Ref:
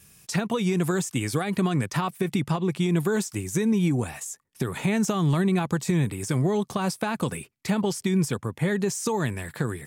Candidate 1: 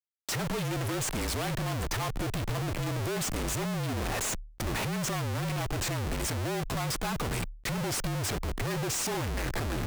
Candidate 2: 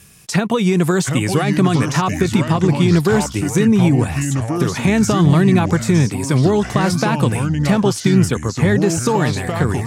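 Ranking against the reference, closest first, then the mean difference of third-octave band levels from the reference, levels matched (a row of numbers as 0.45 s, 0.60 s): 2, 1; 5.5 dB, 12.5 dB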